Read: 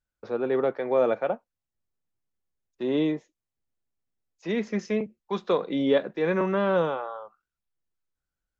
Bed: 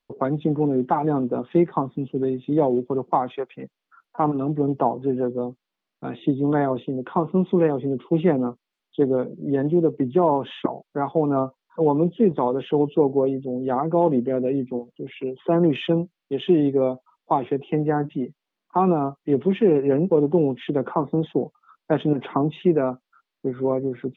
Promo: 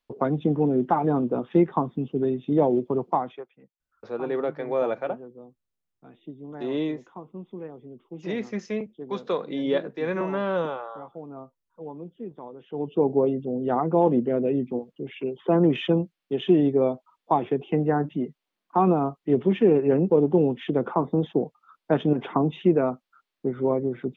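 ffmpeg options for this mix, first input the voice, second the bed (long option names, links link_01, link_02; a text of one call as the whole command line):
ffmpeg -i stem1.wav -i stem2.wav -filter_complex "[0:a]adelay=3800,volume=-2.5dB[link_01];[1:a]volume=17dB,afade=type=out:start_time=3.02:duration=0.51:silence=0.125893,afade=type=in:start_time=12.68:duration=0.45:silence=0.125893[link_02];[link_01][link_02]amix=inputs=2:normalize=0" out.wav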